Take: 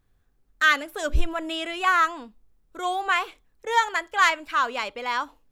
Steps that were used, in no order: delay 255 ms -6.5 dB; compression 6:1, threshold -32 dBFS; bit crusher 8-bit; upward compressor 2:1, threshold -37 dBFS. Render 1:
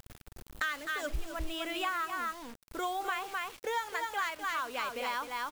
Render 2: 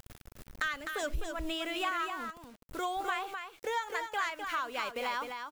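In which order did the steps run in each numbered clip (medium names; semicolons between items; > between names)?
upward compressor > delay > compression > bit crusher; upward compressor > bit crusher > compression > delay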